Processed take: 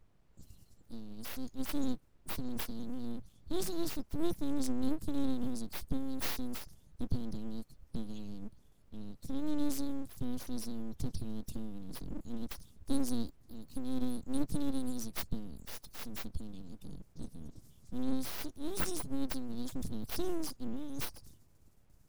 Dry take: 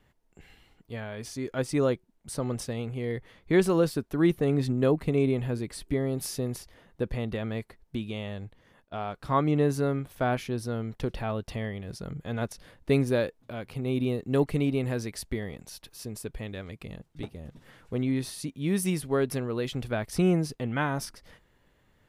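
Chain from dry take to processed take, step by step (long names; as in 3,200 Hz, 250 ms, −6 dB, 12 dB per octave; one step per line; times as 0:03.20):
spectral magnitudes quantised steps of 30 dB
inverse Chebyshev band-stop filter 410–1,800 Hz, stop band 60 dB
noise gate with hold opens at −60 dBFS
background noise brown −68 dBFS
full-wave rectification
level +4.5 dB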